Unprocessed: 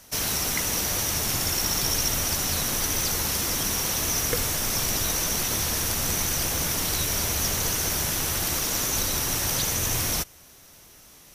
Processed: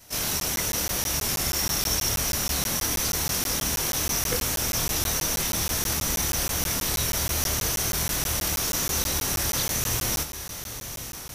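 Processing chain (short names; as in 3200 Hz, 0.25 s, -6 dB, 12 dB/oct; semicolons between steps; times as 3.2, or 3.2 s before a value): short-time reversal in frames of 53 ms; diffused feedback echo 1.026 s, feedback 40%, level -10 dB; crackling interface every 0.16 s, samples 512, zero, from 0.4; gain +2.5 dB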